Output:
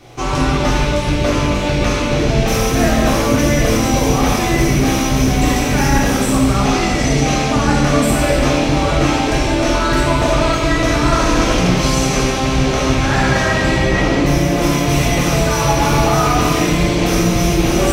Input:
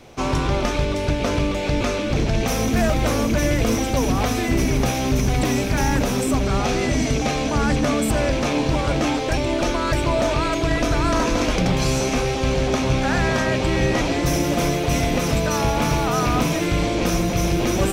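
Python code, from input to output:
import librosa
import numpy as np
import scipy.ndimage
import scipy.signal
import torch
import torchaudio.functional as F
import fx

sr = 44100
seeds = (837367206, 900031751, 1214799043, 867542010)

y = fx.high_shelf(x, sr, hz=4600.0, db=-8.0, at=(13.78, 14.62))
y = fx.rev_gated(y, sr, seeds[0], gate_ms=430, shape='falling', drr_db=-5.5)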